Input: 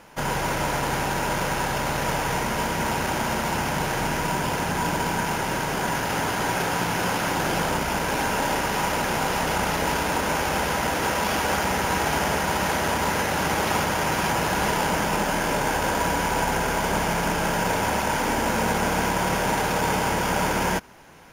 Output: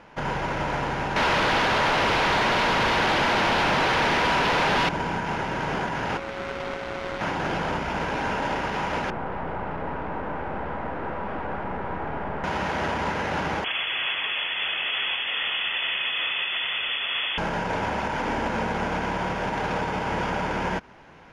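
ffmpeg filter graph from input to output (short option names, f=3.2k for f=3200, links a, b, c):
-filter_complex "[0:a]asettb=1/sr,asplit=3[a][b][c];[a]atrim=end=1.164[d];[b]atrim=start=1.16:end=4.89,asetpts=PTS-STARTPTS,afade=t=in:d=0.004:c=qsin,afade=t=out:st=3.726:d=0.004:c=qsin,highpass=f=430:p=1,aeval=exprs='0.224*sin(PI/2*5.01*val(0)/0.224)':c=same[e];[c]atrim=start=4.886[f];[d][e]acrossfade=d=0.004:c1=hsin:c2=qsin[g];[g][f]acrossfade=d=0.004:c1=qsin:c2=hsin,asettb=1/sr,asplit=3[h][i][j];[h]atrim=end=6.174[k];[i]atrim=start=6.17:end=7.21,asetpts=PTS-STARTPTS,afade=t=in:d=0.004:c=qsin,afade=t=out:st=1.036:d=0.004:c=qsin,aeval=exprs='max(val(0),0)':c=same,aeval=exprs='val(0)*sin(2*PI*550*n/s)':c=same[l];[j]atrim=start=7.206[m];[k][l]acrossfade=d=0.004:c1=hsin:c2=qsin[n];[n][m]acrossfade=d=0.004:c1=qsin:c2=hsin,asettb=1/sr,asplit=3[o][p][q];[o]atrim=end=9.104[r];[p]atrim=start=9.1:end=12.44,asetpts=PTS-STARTPTS,afade=t=in:d=0.004:c=qsin,afade=t=out:st=3.336:d=0.004:c=qsin,aeval=exprs='(tanh(17.8*val(0)+0.7)-tanh(0.7))/17.8':c=same,lowpass=1.4k[s];[q]atrim=start=12.436[t];[r][s]acrossfade=d=0.004:c1=hsin:c2=qsin[u];[u][t]acrossfade=d=0.004:c1=qsin:c2=hsin,asettb=1/sr,asplit=3[v][w][x];[v]atrim=end=13.644[y];[w]atrim=start=13.64:end=17.38,asetpts=PTS-STARTPTS,afade=t=in:d=0.004:c=qsin,afade=t=out:st=3.736:d=0.004:c=qsin,equalizer=f=67:w=0.6:g=6,lowpass=f=3k:t=q:w=0.5098,lowpass=f=3k:t=q:w=0.6013,lowpass=f=3k:t=q:w=0.9,lowpass=f=3k:t=q:w=2.563,afreqshift=-3500[z];[x]atrim=start=17.376[aa];[y][z]acrossfade=d=0.004:c1=hsin:c2=qsin[ab];[ab][aa]acrossfade=d=0.004:c1=qsin:c2=hsin,lowpass=3.4k,alimiter=limit=-17.5dB:level=0:latency=1:release=145"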